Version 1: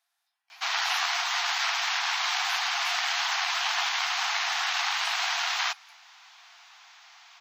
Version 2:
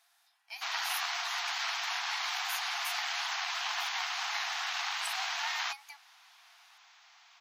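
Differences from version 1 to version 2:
speech +10.0 dB; background -7.0 dB

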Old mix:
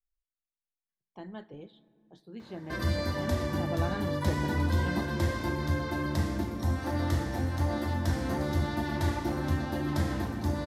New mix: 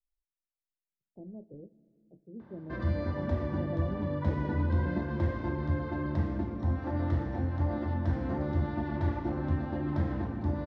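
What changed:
speech: add Chebyshev low-pass 600 Hz, order 4; master: add tape spacing loss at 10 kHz 40 dB

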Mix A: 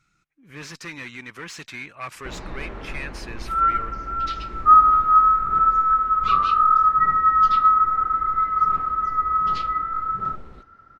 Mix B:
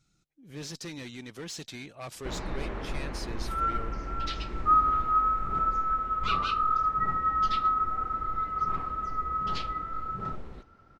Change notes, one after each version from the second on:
speech: add high-order bell 1.6 kHz -11.5 dB; second sound -10.0 dB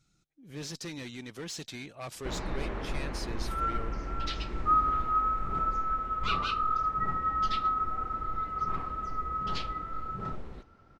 second sound -3.0 dB

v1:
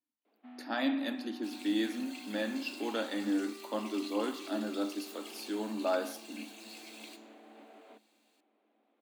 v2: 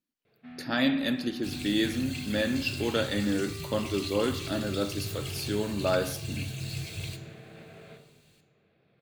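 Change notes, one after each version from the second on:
first sound: send on; master: remove rippled Chebyshev high-pass 210 Hz, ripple 9 dB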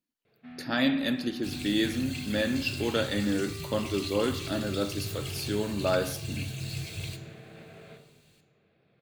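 no change

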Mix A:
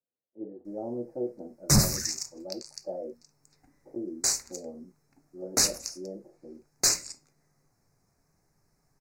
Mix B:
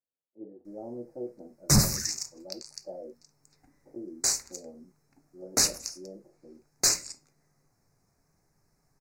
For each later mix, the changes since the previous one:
speech -5.0 dB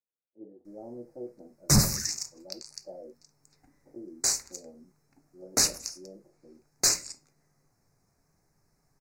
speech -3.0 dB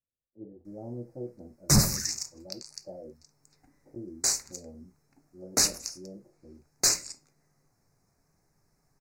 speech: remove high-pass 280 Hz 12 dB/octave

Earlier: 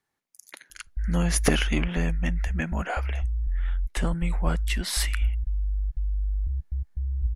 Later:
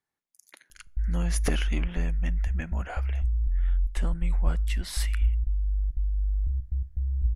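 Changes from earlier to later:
speech -8.0 dB; reverb: on, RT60 0.60 s

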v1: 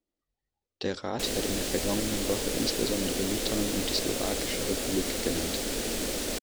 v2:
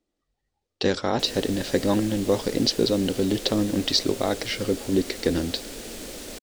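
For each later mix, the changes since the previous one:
speech +8.5 dB; background -6.0 dB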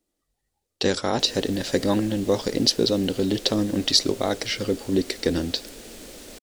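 speech: remove distance through air 87 m; background -4.5 dB

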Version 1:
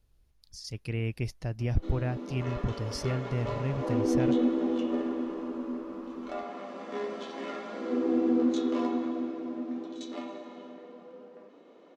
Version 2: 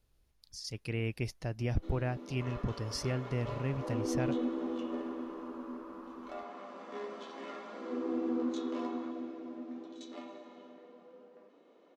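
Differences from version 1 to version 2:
first sound -6.5 dB; master: add bass shelf 160 Hz -6.5 dB

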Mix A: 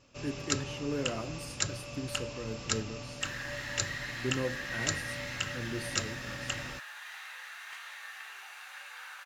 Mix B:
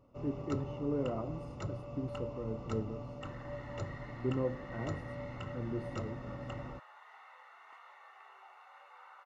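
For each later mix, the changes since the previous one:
master: add Savitzky-Golay filter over 65 samples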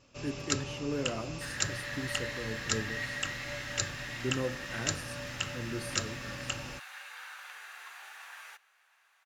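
second sound: entry -1.80 s; master: remove Savitzky-Golay filter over 65 samples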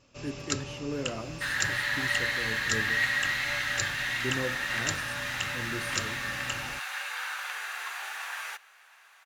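second sound +11.0 dB

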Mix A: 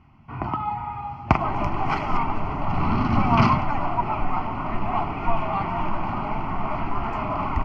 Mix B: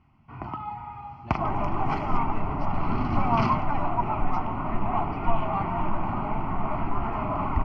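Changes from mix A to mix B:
speech: remove low-pass 3.3 kHz 24 dB/octave; first sound -7.5 dB; second sound: add tape spacing loss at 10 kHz 24 dB

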